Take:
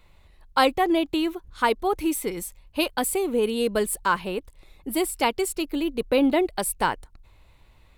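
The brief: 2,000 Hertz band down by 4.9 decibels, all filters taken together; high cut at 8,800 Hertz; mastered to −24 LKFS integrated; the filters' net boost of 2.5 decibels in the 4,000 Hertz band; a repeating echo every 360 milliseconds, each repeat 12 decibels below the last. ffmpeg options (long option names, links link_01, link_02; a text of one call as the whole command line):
ffmpeg -i in.wav -af "lowpass=8800,equalizer=frequency=2000:width_type=o:gain=-9,equalizer=frequency=4000:width_type=o:gain=7,aecho=1:1:360|720|1080:0.251|0.0628|0.0157,volume=1.5dB" out.wav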